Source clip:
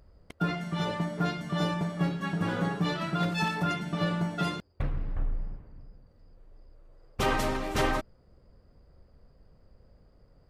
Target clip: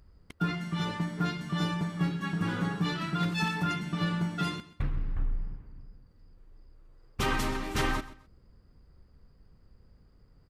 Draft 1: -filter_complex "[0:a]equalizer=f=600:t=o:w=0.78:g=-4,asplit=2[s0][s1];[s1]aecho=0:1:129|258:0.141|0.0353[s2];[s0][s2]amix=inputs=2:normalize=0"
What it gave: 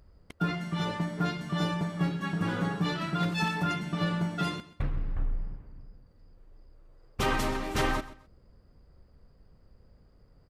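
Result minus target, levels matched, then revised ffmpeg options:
500 Hz band +3.0 dB
-filter_complex "[0:a]equalizer=f=600:t=o:w=0.78:g=-10.5,asplit=2[s0][s1];[s1]aecho=0:1:129|258:0.141|0.0353[s2];[s0][s2]amix=inputs=2:normalize=0"

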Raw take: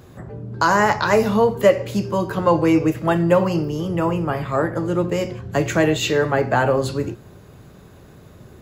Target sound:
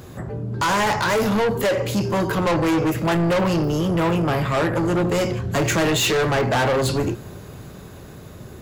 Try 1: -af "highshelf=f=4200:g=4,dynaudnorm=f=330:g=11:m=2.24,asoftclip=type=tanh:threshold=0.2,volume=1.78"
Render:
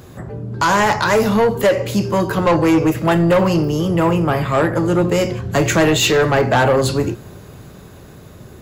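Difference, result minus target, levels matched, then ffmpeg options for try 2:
saturation: distortion -5 dB
-af "highshelf=f=4200:g=4,dynaudnorm=f=330:g=11:m=2.24,asoftclip=type=tanh:threshold=0.0794,volume=1.78"

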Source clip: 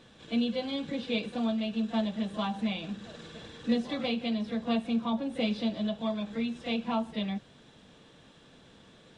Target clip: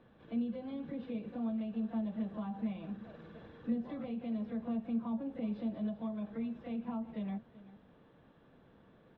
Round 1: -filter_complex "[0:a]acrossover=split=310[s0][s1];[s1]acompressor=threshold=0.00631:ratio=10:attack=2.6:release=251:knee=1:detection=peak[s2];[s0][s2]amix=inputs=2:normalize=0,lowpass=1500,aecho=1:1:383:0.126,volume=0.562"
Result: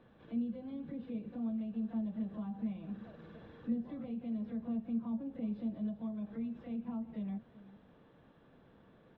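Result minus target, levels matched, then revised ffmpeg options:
compression: peak gain reduction +7 dB
-filter_complex "[0:a]acrossover=split=310[s0][s1];[s1]acompressor=threshold=0.0158:ratio=10:attack=2.6:release=251:knee=1:detection=peak[s2];[s0][s2]amix=inputs=2:normalize=0,lowpass=1500,aecho=1:1:383:0.126,volume=0.562"

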